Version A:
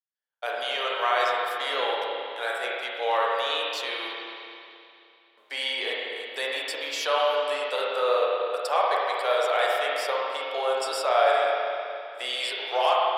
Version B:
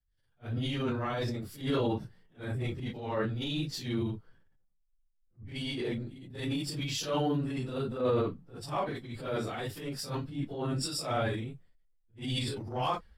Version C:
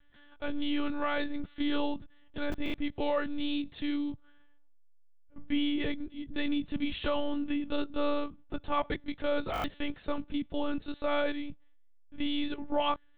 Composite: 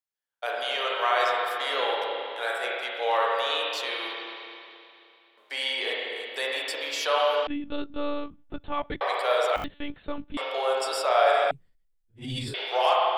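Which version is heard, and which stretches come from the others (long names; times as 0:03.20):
A
0:07.47–0:09.01: punch in from C
0:09.56–0:10.37: punch in from C
0:11.51–0:12.54: punch in from B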